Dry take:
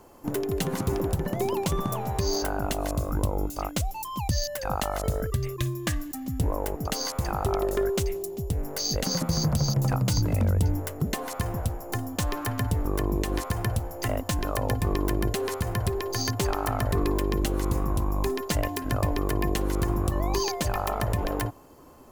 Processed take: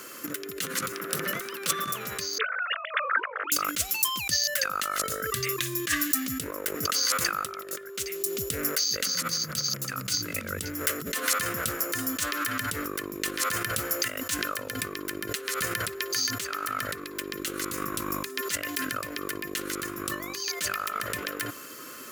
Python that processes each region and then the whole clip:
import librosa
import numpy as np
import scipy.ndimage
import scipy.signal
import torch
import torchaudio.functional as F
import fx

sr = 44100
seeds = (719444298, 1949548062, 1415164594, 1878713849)

y = fx.chain(x, sr, fx.highpass(hz=130.0, slope=24),
    fx.notch(hz=6900.0, q=18.0),
    fx.transformer_sat(knee_hz=1100.0), at=(0.92, 1.84))
y = fx.chain(y, sr, fx.sine_speech(),
    fx.highpass(hz=630.0, slope=24), at=(2.38, 3.52))
y = scipy.signal.sosfilt(scipy.signal.butter(2, 210.0, 'highpass', fs=sr, output='sos'), y)
y = fx.over_compress(y, sr, threshold_db=-37.0, ratio=-1.0)
y = fx.curve_eq(y, sr, hz=(540.0, 830.0, 1300.0), db=(0, -15, 14))